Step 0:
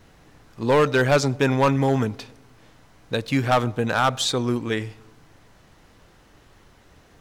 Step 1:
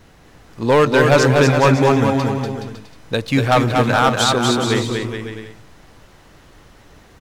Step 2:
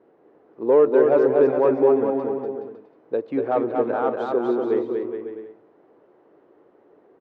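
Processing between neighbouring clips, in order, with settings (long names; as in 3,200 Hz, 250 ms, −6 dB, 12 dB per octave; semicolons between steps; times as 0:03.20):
bouncing-ball delay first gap 240 ms, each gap 0.75×, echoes 5; level +4.5 dB
four-pole ladder band-pass 450 Hz, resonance 50%; level +6 dB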